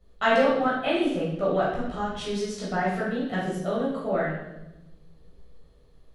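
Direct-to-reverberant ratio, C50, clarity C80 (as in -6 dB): -8.5 dB, 1.5 dB, 5.0 dB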